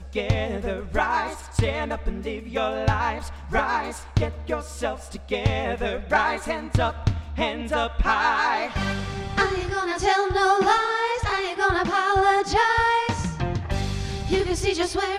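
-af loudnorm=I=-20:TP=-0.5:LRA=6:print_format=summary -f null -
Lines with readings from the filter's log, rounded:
Input Integrated:    -23.9 LUFS
Input True Peak:      -5.9 dBTP
Input LRA:             4.0 LU
Input Threshold:     -34.0 LUFS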